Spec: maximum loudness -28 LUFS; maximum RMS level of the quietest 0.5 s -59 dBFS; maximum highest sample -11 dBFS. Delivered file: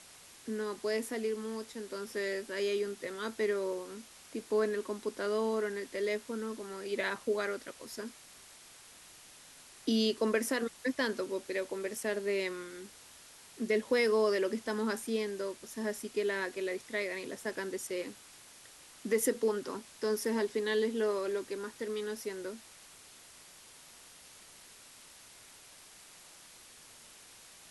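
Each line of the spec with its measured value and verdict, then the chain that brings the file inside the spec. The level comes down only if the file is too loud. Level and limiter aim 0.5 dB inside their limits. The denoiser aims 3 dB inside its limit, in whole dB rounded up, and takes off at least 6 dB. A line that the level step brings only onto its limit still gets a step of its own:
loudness -34.5 LUFS: OK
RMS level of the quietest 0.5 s -55 dBFS: fail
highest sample -18.0 dBFS: OK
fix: denoiser 7 dB, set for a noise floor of -55 dBFS

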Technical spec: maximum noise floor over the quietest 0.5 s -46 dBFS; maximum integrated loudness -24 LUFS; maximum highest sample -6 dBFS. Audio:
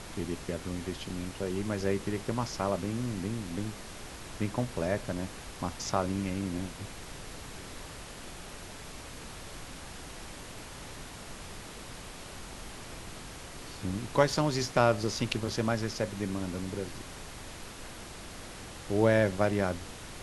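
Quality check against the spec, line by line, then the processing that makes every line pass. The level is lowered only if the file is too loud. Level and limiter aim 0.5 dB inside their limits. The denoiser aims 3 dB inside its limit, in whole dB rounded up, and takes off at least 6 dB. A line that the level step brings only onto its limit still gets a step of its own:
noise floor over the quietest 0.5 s -44 dBFS: fail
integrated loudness -34.0 LUFS: OK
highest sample -8.5 dBFS: OK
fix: denoiser 6 dB, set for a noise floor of -44 dBFS

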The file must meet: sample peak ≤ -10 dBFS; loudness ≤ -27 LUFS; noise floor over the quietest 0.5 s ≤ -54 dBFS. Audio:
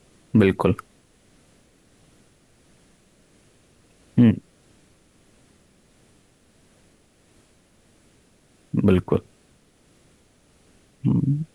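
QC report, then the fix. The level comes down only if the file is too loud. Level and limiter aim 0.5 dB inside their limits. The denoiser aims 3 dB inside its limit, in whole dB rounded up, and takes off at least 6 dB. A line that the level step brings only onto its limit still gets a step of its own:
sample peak -5.5 dBFS: fail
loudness -21.5 LUFS: fail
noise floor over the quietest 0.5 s -59 dBFS: OK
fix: gain -6 dB

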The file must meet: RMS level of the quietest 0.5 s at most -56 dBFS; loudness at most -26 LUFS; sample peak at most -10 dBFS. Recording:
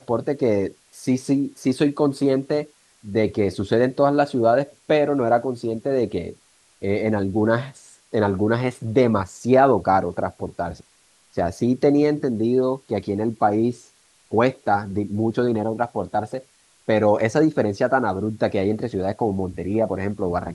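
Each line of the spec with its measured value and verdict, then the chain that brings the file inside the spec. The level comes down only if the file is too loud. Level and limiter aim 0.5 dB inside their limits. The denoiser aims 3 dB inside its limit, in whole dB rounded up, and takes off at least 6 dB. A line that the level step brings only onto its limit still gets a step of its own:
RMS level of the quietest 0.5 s -58 dBFS: OK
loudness -22.0 LUFS: fail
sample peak -4.5 dBFS: fail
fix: gain -4.5 dB; limiter -10.5 dBFS

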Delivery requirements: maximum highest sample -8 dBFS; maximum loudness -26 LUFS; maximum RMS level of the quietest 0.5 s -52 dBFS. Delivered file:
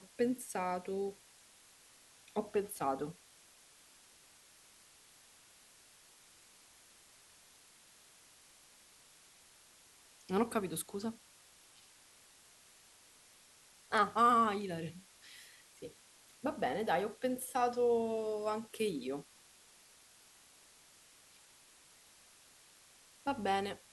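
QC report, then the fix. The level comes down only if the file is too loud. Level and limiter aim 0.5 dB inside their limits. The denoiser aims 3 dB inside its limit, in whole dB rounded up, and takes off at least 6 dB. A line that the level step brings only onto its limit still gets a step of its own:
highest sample -16.0 dBFS: OK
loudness -35.5 LUFS: OK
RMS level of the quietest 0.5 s -63 dBFS: OK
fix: none

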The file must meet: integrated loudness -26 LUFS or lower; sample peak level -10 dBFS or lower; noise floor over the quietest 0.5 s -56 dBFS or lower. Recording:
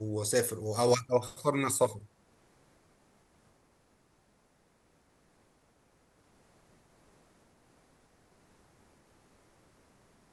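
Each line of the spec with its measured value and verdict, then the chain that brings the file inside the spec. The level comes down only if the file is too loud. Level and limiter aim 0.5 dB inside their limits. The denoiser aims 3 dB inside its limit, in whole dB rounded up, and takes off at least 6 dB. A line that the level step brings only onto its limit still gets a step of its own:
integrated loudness -30.0 LUFS: OK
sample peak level -13.0 dBFS: OK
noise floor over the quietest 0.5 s -69 dBFS: OK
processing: none

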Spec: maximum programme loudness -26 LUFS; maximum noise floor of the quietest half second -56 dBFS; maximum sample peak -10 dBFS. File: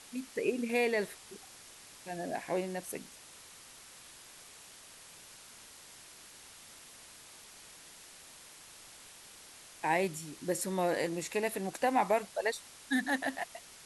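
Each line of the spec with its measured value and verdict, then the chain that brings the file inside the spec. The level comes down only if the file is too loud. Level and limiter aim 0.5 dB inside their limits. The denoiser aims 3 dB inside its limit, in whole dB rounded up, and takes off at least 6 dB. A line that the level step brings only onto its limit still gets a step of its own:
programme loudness -34.0 LUFS: OK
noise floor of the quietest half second -54 dBFS: fail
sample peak -17.0 dBFS: OK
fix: denoiser 6 dB, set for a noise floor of -54 dBFS

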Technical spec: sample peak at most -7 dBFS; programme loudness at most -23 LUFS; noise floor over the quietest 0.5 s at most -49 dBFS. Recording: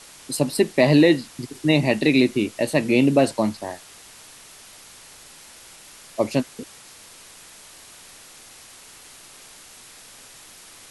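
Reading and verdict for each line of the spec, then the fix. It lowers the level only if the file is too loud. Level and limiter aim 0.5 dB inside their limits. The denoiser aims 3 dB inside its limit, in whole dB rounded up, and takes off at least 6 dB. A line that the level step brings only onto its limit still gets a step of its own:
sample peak -5.0 dBFS: fail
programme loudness -20.0 LUFS: fail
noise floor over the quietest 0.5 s -46 dBFS: fail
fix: gain -3.5 dB

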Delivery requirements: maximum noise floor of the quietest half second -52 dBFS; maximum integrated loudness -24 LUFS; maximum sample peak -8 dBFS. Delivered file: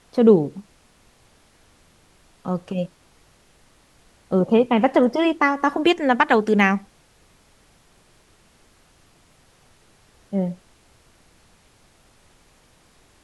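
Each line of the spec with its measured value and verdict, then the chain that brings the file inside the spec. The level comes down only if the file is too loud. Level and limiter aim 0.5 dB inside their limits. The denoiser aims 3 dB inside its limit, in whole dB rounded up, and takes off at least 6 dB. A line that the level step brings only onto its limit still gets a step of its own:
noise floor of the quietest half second -57 dBFS: OK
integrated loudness -20.0 LUFS: fail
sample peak -2.5 dBFS: fail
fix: gain -4.5 dB; limiter -8.5 dBFS

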